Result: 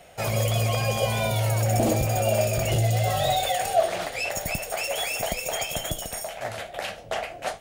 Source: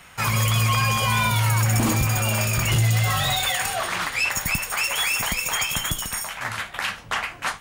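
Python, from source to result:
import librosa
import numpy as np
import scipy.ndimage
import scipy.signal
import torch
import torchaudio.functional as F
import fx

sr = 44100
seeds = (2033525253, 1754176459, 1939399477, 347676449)

y = fx.curve_eq(x, sr, hz=(250.0, 670.0, 1000.0, 3400.0), db=(0, 15, -9, -2))
y = y * 10.0 ** (-3.5 / 20.0)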